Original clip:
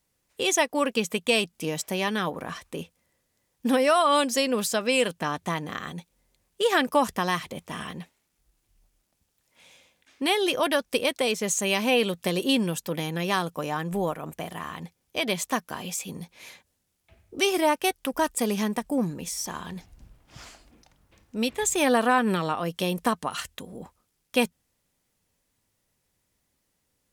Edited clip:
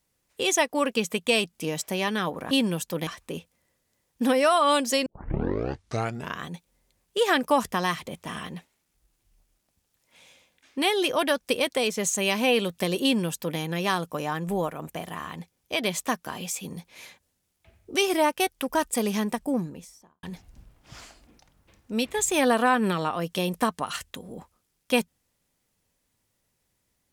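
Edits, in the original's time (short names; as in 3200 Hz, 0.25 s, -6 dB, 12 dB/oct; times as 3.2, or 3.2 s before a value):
4.5 tape start 1.40 s
12.47–13.03 copy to 2.51
18.82–19.67 studio fade out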